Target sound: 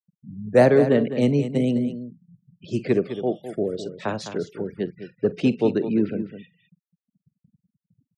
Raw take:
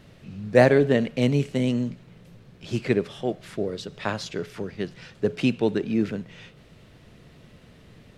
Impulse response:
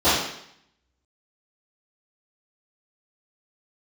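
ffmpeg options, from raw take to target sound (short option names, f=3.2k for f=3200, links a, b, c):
-filter_complex "[0:a]acrossover=split=270|540|2400[a][b][c][d];[b]asoftclip=type=tanh:threshold=-20dB[e];[a][e][c][d]amix=inputs=4:normalize=0,aemphasis=mode=production:type=bsi,afftfilt=real='re*gte(hypot(re,im),0.0158)':imag='im*gte(hypot(re,im),0.0158)':win_size=1024:overlap=0.75,tiltshelf=f=970:g=8.5,agate=range=-33dB:threshold=-60dB:ratio=3:detection=peak,aecho=1:1:46|207:0.126|0.282"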